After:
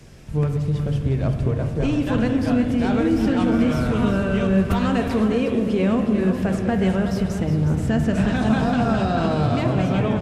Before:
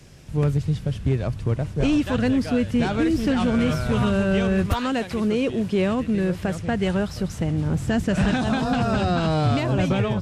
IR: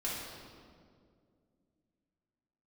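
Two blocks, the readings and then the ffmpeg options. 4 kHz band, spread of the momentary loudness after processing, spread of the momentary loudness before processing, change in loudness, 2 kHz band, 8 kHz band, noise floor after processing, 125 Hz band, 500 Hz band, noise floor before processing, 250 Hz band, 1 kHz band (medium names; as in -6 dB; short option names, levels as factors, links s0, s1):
-2.5 dB, 4 LU, 4 LU, +2.0 dB, 0.0 dB, no reading, -27 dBFS, +2.0 dB, +1.5 dB, -35 dBFS, +2.5 dB, +1.0 dB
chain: -filter_complex "[0:a]acompressor=threshold=0.0891:ratio=6,aecho=1:1:364:0.335,asplit=2[s0][s1];[1:a]atrim=start_sample=2205,lowpass=2700[s2];[s1][s2]afir=irnorm=-1:irlink=0,volume=0.531[s3];[s0][s3]amix=inputs=2:normalize=0"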